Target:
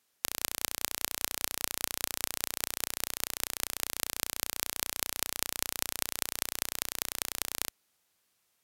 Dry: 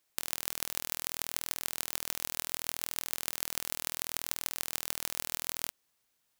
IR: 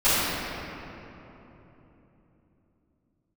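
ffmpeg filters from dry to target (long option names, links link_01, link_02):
-af "highpass=frequency=65:poles=1,asetrate=32667,aresample=44100,volume=1.5dB"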